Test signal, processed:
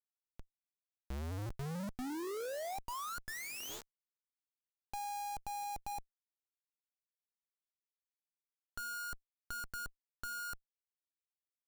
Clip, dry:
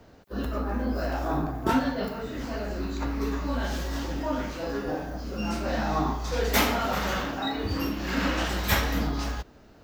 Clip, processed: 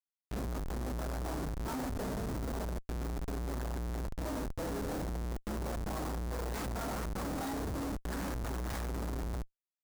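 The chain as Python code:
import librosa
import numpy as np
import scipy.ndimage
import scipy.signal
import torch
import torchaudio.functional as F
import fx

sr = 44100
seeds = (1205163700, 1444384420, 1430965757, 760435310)

p1 = fx.tracing_dist(x, sr, depth_ms=0.041)
p2 = fx.step_gate(p1, sr, bpm=151, pattern='xx.xxx.xxxxxx', floor_db=-24.0, edge_ms=4.5)
p3 = scipy.signal.sosfilt(scipy.signal.butter(2, 3800.0, 'lowpass', fs=sr, output='sos'), p2)
p4 = fx.low_shelf(p3, sr, hz=81.0, db=3.5)
p5 = p4 + fx.echo_single(p4, sr, ms=90, db=-19.5, dry=0)
p6 = fx.rev_spring(p5, sr, rt60_s=1.2, pass_ms=(51,), chirp_ms=70, drr_db=17.5)
p7 = fx.schmitt(p6, sr, flips_db=-35.0)
p8 = fx.dynamic_eq(p7, sr, hz=2800.0, q=1.0, threshold_db=-48.0, ratio=4.0, max_db=-8)
y = p8 * librosa.db_to_amplitude(-8.0)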